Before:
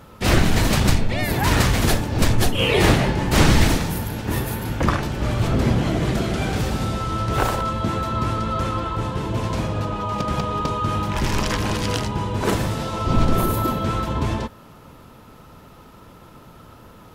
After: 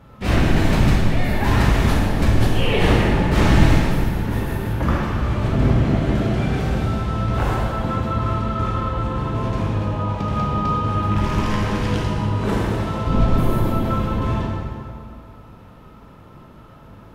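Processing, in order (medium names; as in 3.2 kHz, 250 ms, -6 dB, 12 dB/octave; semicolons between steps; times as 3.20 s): tone controls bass +4 dB, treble -9 dB; plate-style reverb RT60 2.2 s, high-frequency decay 0.75×, DRR -3.5 dB; trim -5.5 dB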